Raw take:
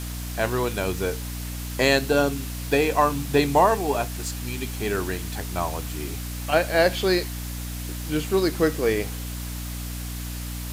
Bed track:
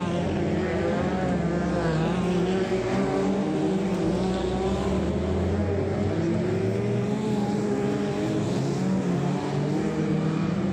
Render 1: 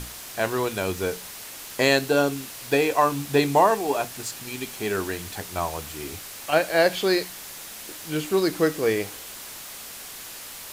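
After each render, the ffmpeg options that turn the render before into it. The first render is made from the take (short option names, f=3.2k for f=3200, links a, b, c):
-af "bandreject=f=60:t=h:w=6,bandreject=f=120:t=h:w=6,bandreject=f=180:t=h:w=6,bandreject=f=240:t=h:w=6,bandreject=f=300:t=h:w=6"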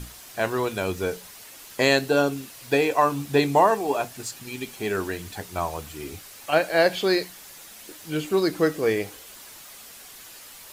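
-af "afftdn=nr=7:nf=-40"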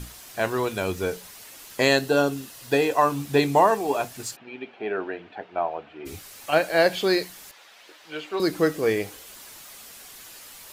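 -filter_complex "[0:a]asettb=1/sr,asplit=3[a][b][c];[a]atrim=end=1.884[d];[b]atrim=start=1.88:end=3.05,asetpts=PTS-STARTPTS,afade=t=in:d=0.004:c=qsin,afade=t=out:st=1.166:d=0.004:c=qsin,bandreject=f=2.3k:w=9.5[e];[c]atrim=start=3.046[f];[d][e]acrossfade=d=0.004:c1=hsin:c2=qsin[g];[g][f]acrossfade=d=0.004:c1=qsin:c2=hsin,asplit=3[h][i][j];[h]afade=t=out:st=4.35:d=0.02[k];[i]highpass=310,equalizer=f=690:t=q:w=4:g=6,equalizer=f=1.1k:t=q:w=4:g=-5,equalizer=f=2k:t=q:w=4:g=-5,lowpass=f=2.6k:w=0.5412,lowpass=f=2.6k:w=1.3066,afade=t=in:st=4.35:d=0.02,afade=t=out:st=6.05:d=0.02[l];[j]afade=t=in:st=6.05:d=0.02[m];[k][l][m]amix=inputs=3:normalize=0,asettb=1/sr,asplit=3[n][o][p];[n]atrim=end=7.514[q];[o]atrim=start=7.51:end=8.4,asetpts=PTS-STARTPTS,afade=t=in:d=0.004:c=qsin,afade=t=out:st=0.886:d=0.004:c=qsin,acrossover=split=440 4700:gain=0.1 1 0.112[r][s][t];[r][s][t]amix=inputs=3:normalize=0[u];[p]atrim=start=8.396[v];[q][u]acrossfade=d=0.004:c1=hsin:c2=qsin[w];[w][v]acrossfade=d=0.004:c1=qsin:c2=hsin"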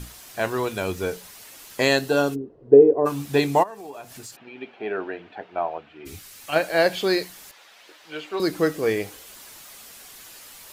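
-filter_complex "[0:a]asplit=3[a][b][c];[a]afade=t=out:st=2.34:d=0.02[d];[b]lowpass=f=410:t=q:w=5,afade=t=in:st=2.34:d=0.02,afade=t=out:st=3.05:d=0.02[e];[c]afade=t=in:st=3.05:d=0.02[f];[d][e][f]amix=inputs=3:normalize=0,asplit=3[g][h][i];[g]afade=t=out:st=3.62:d=0.02[j];[h]acompressor=threshold=-37dB:ratio=4:attack=3.2:release=140:knee=1:detection=peak,afade=t=in:st=3.62:d=0.02,afade=t=out:st=4.55:d=0.02[k];[i]afade=t=in:st=4.55:d=0.02[l];[j][k][l]amix=inputs=3:normalize=0,asettb=1/sr,asplit=3[m][n][o];[m]atrim=end=5.784[p];[n]atrim=start=5.78:end=6.56,asetpts=PTS-STARTPTS,afade=t=in:d=0.004:c=qsin,afade=t=out:st=0.776:d=0.004:c=qsin,equalizer=f=620:t=o:w=1.9:g=-6[q];[o]atrim=start=6.556[r];[p][q]acrossfade=d=0.004:c1=hsin:c2=qsin[s];[s][r]acrossfade=d=0.004:c1=qsin:c2=hsin"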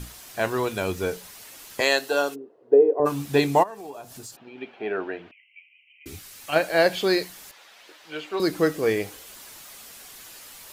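-filter_complex "[0:a]asettb=1/sr,asplit=3[a][b][c];[a]atrim=end=1.804[d];[b]atrim=start=1.8:end=3,asetpts=PTS-STARTPTS,afade=t=in:d=0.004:c=qsin,afade=t=out:st=1.196:d=0.004:c=qsin,highpass=480[e];[c]atrim=start=2.996[f];[d][e]acrossfade=d=0.004:c1=hsin:c2=qsin[g];[g][f]acrossfade=d=0.004:c1=qsin:c2=hsin,asettb=1/sr,asplit=3[h][i][j];[h]atrim=end=3.934[k];[i]atrim=start=3.93:end=4.58,asetpts=PTS-STARTPTS,afade=t=in:d=0.004:c=qsin,afade=t=out:st=0.646:d=0.004:c=qsin,equalizer=f=2.1k:t=o:w=1.1:g=-7[l];[j]atrim=start=4.576[m];[k][l]acrossfade=d=0.004:c1=hsin:c2=qsin[n];[n][m]acrossfade=d=0.004:c1=qsin:c2=hsin,asettb=1/sr,asplit=3[o][p][q];[o]atrim=end=5.314[r];[p]atrim=start=5.31:end=6.06,asetpts=PTS-STARTPTS,afade=t=in:d=0.004:c=qsin,afade=t=out:st=0.746:d=0.004:c=qsin,asuperpass=centerf=2500:order=20:qfactor=2.3[s];[q]atrim=start=6.056[t];[r][s]acrossfade=d=0.004:c1=hsin:c2=qsin[u];[u][t]acrossfade=d=0.004:c1=qsin:c2=hsin"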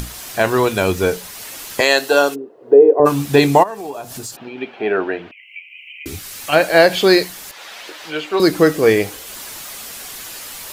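-af "acompressor=mode=upward:threshold=-37dB:ratio=2.5,alimiter=level_in=10dB:limit=-1dB:release=50:level=0:latency=1"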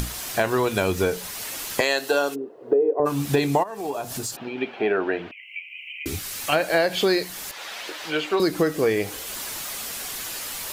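-af "acompressor=threshold=-19dB:ratio=4"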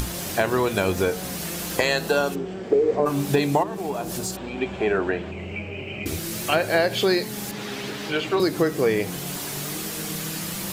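-filter_complex "[1:a]volume=-9.5dB[a];[0:a][a]amix=inputs=2:normalize=0"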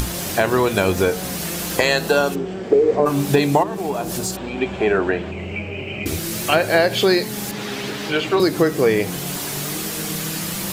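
-af "volume=4.5dB,alimiter=limit=-2dB:level=0:latency=1"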